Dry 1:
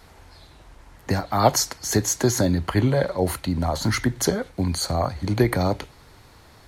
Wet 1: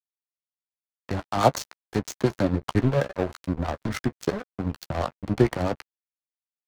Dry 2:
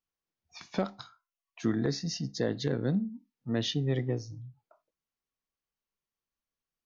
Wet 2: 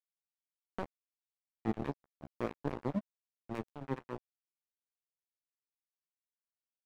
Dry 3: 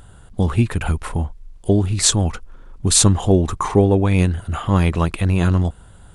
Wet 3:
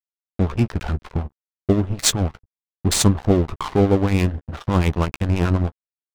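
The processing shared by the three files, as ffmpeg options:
-filter_complex "[0:a]adynamicsmooth=sensitivity=2.5:basefreq=510,acrossover=split=650[s0][s1];[s0]aeval=exprs='val(0)*(1-0.5/2+0.5/2*cos(2*PI*9.4*n/s))':c=same[s2];[s1]aeval=exprs='val(0)*(1-0.5/2-0.5/2*cos(2*PI*9.4*n/s))':c=same[s3];[s2][s3]amix=inputs=2:normalize=0,aeval=exprs='sgn(val(0))*max(abs(val(0))-0.0335,0)':c=same,asplit=2[s4][s5];[s5]adelay=14,volume=0.224[s6];[s4][s6]amix=inputs=2:normalize=0,volume=1.26"

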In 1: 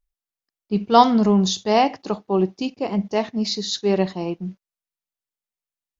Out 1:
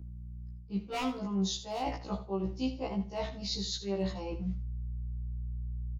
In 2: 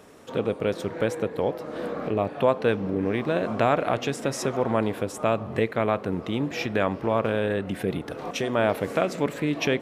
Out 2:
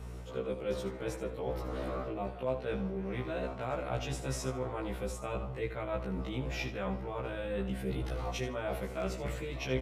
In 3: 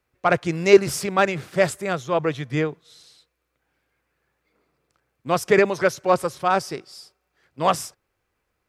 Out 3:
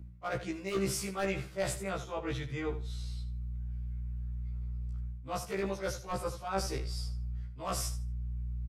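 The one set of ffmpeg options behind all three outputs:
-filter_complex "[0:a]aeval=exprs='val(0)+0.01*(sin(2*PI*60*n/s)+sin(2*PI*2*60*n/s)/2+sin(2*PI*3*60*n/s)/3+sin(2*PI*4*60*n/s)/4+sin(2*PI*5*60*n/s)/5)':c=same,lowshelf=f=75:g=-5,acrossover=split=170[s0][s1];[s1]aeval=exprs='0.355*(abs(mod(val(0)/0.355+3,4)-2)-1)':c=same[s2];[s0][s2]amix=inputs=2:normalize=0,bandreject=f=1700:w=14,asubboost=boost=3:cutoff=120,areverse,acompressor=threshold=0.0355:ratio=16,areverse,aecho=1:1:77|154|231:0.251|0.0553|0.0122,afftfilt=real='re*1.73*eq(mod(b,3),0)':imag='im*1.73*eq(mod(b,3),0)':win_size=2048:overlap=0.75"

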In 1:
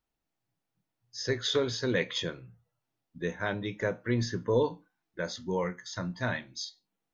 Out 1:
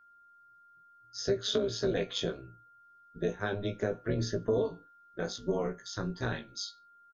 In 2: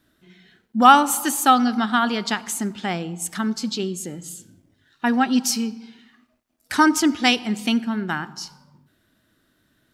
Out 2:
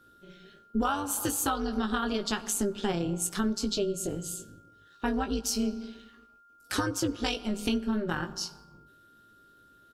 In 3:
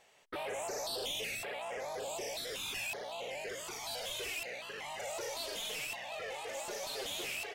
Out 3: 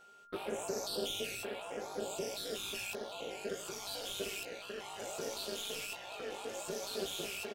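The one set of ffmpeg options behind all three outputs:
-filter_complex "[0:a]equalizer=f=400:t=o:w=0.33:g=10,equalizer=f=630:t=o:w=0.33:g=-6,equalizer=f=1000:t=o:w=0.33:g=-4,equalizer=f=2000:t=o:w=0.33:g=-12,acompressor=threshold=0.0562:ratio=12,tremolo=f=200:d=0.788,aeval=exprs='val(0)+0.000891*sin(2*PI*1400*n/s)':c=same,asplit=2[s0][s1];[s1]adelay=18,volume=0.447[s2];[s0][s2]amix=inputs=2:normalize=0,volume=1.26"

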